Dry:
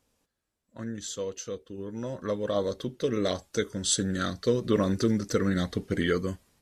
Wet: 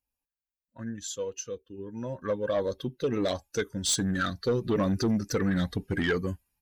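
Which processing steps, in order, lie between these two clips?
expander on every frequency bin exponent 1.5; peaking EQ 1.6 kHz +7 dB 0.21 oct; in parallel at -1 dB: peak limiter -23 dBFS, peak gain reduction 10.5 dB; on the sum: saturation -19.5 dBFS, distortion -14 dB

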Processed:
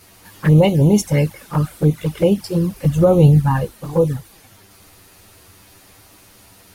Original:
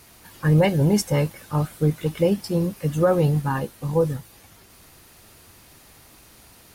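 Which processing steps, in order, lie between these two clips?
touch-sensitive flanger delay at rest 11.5 ms, full sweep at -15.5 dBFS; 2.74–3.72 s: bass shelf 130 Hz +10 dB; trim +6 dB

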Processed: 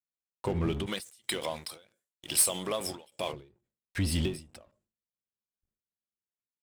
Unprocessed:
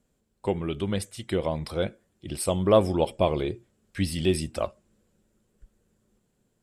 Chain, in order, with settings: octave divider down 1 oct, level -4 dB; compression 10:1, threshold -23 dBFS, peak gain reduction 11 dB; peak limiter -22.5 dBFS, peak gain reduction 8 dB; gate -60 dBFS, range -26 dB; 0.86–3.33 s: tilt EQ +4.5 dB/octave; waveshaping leveller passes 3; bass shelf 63 Hz -6 dB; endings held to a fixed fall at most 140 dB/s; trim -7.5 dB

